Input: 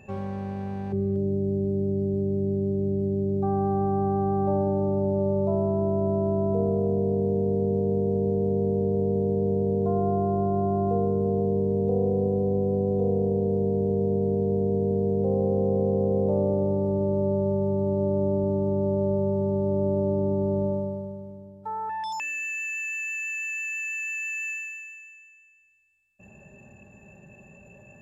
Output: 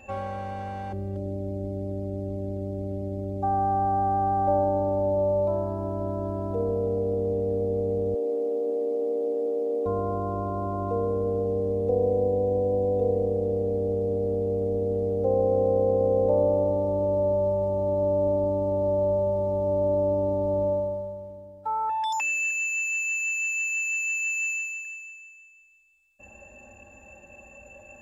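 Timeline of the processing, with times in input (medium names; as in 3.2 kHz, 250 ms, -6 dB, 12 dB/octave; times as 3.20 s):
8.14–9.86 s: brick-wall FIR high-pass 230 Hz
22.50–24.85 s: comb of notches 430 Hz
whole clip: peaking EQ 190 Hz -14 dB 0.86 oct; comb 3.7 ms, depth 94%; trim +2 dB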